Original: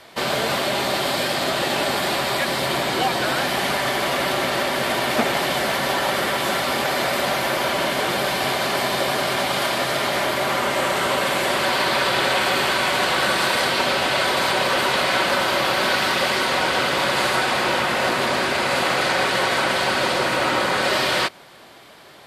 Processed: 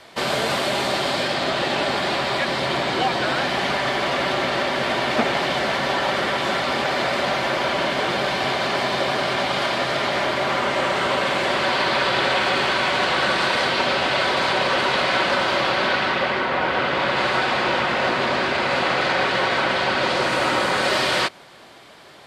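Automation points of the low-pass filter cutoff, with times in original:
0:00.73 9,600 Hz
0:01.40 5,200 Hz
0:15.58 5,200 Hz
0:16.50 2,200 Hz
0:17.42 4,400 Hz
0:19.97 4,400 Hz
0:20.41 9,600 Hz

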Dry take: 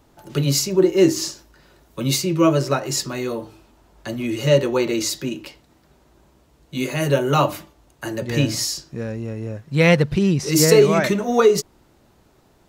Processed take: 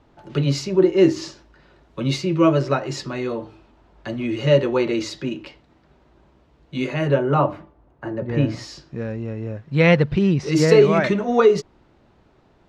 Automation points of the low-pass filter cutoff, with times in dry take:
0:06.85 3,400 Hz
0:07.41 1,300 Hz
0:08.26 1,300 Hz
0:08.88 3,400 Hz

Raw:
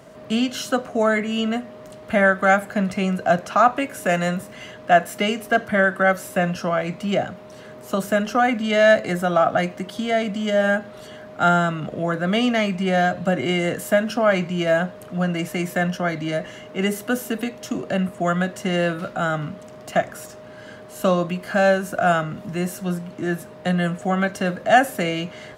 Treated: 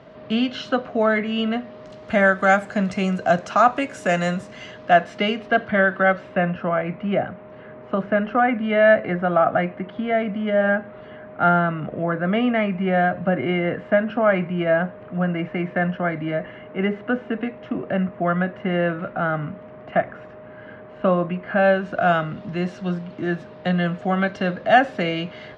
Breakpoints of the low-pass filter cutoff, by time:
low-pass filter 24 dB per octave
0:01.56 4,100 Hz
0:02.23 7,400 Hz
0:04.33 7,400 Hz
0:05.49 3,900 Hz
0:06.00 3,900 Hz
0:06.56 2,400 Hz
0:21.45 2,400 Hz
0:22.03 4,400 Hz

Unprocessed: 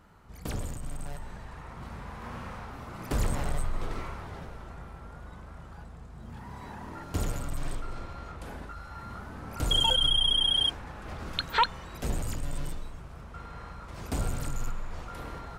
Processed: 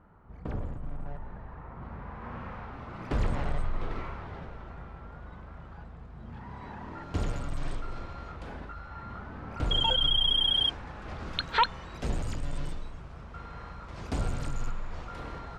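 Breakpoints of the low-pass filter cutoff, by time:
0:01.69 1,400 Hz
0:02.93 3,300 Hz
0:06.58 3,300 Hz
0:07.65 5,500 Hz
0:08.20 5,500 Hz
0:08.88 3,200 Hz
0:09.74 3,200 Hz
0:10.35 5,600 Hz

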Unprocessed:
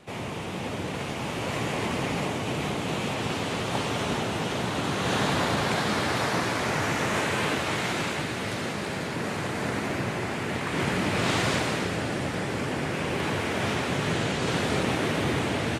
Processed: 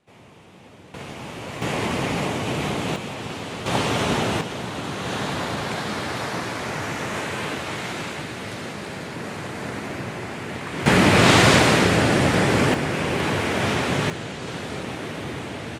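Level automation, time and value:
−14.5 dB
from 0:00.94 −3.5 dB
from 0:01.62 +4 dB
from 0:02.96 −2.5 dB
from 0:03.66 +6 dB
from 0:04.41 −1.5 dB
from 0:10.86 +11 dB
from 0:12.74 +5 dB
from 0:14.10 −5 dB

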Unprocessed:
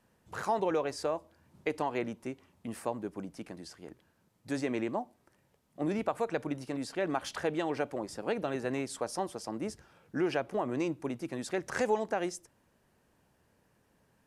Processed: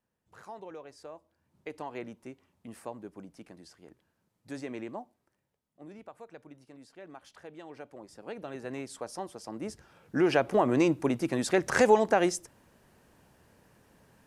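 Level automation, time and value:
0:00.95 −14.5 dB
0:01.97 −6 dB
0:05.00 −6 dB
0:05.81 −16 dB
0:07.42 −16 dB
0:08.79 −4 dB
0:09.37 −4 dB
0:10.48 +8 dB

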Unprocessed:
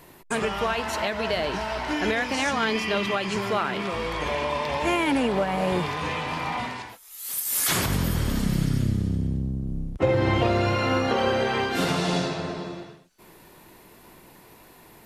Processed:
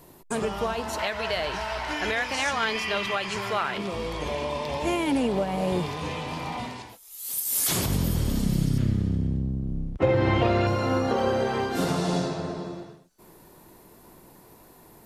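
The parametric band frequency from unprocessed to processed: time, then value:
parametric band −9 dB 1.6 octaves
2,100 Hz
from 0:00.99 250 Hz
from 0:03.78 1,600 Hz
from 0:08.78 12,000 Hz
from 0:10.67 2,500 Hz

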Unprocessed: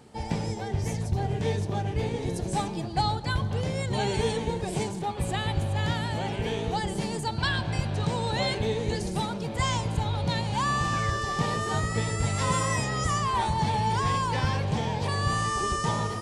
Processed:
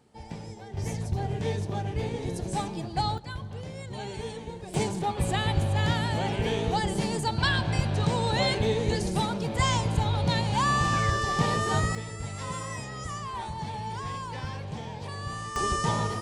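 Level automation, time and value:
−10 dB
from 0:00.77 −2 dB
from 0:03.18 −9.5 dB
from 0:04.74 +2 dB
from 0:11.95 −9 dB
from 0:15.56 +0.5 dB

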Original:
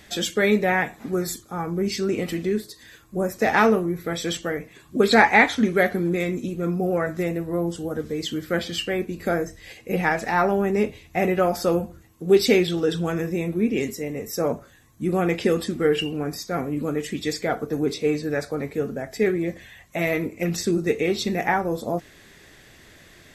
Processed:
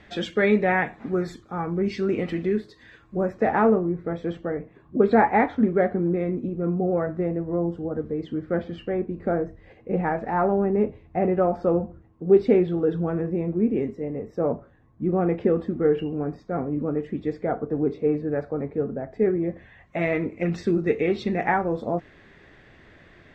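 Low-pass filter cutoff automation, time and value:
0:03.18 2,400 Hz
0:03.60 1,000 Hz
0:19.39 1,000 Hz
0:20.00 2,200 Hz

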